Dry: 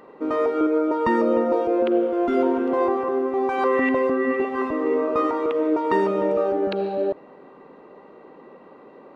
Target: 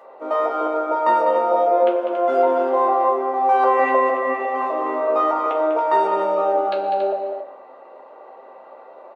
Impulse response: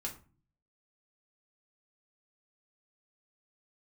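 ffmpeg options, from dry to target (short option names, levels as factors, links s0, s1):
-filter_complex "[0:a]highpass=f=660:t=q:w=4.2,aecho=1:1:198.3|279.9:0.398|0.355[s0];[1:a]atrim=start_sample=2205[s1];[s0][s1]afir=irnorm=-1:irlink=0"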